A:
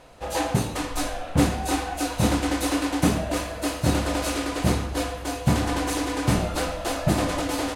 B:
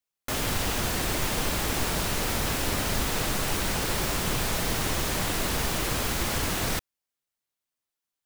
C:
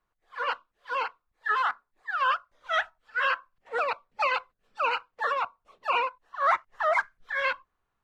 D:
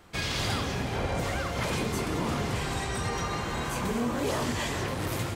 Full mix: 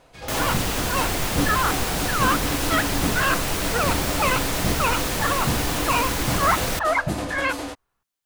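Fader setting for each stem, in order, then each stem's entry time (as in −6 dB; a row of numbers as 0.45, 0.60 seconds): −4.5, +2.5, +3.0, −11.5 decibels; 0.00, 0.00, 0.00, 0.00 seconds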